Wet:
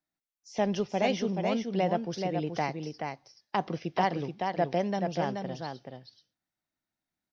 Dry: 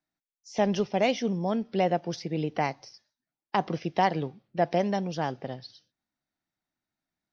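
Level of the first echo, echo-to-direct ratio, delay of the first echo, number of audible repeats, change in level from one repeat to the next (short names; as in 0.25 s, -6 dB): -5.0 dB, -5.0 dB, 0.429 s, 1, no steady repeat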